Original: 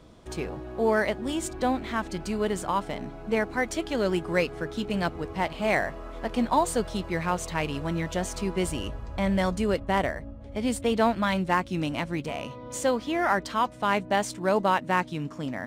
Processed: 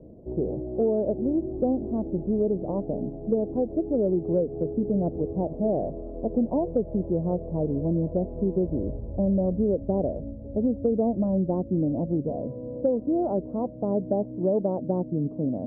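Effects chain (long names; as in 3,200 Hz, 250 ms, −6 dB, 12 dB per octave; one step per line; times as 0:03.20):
Butterworth low-pass 600 Hz 36 dB per octave
low-shelf EQ 83 Hz −8 dB
downward compressor 4 to 1, threshold −28 dBFS, peak gain reduction 7 dB
level +7.5 dB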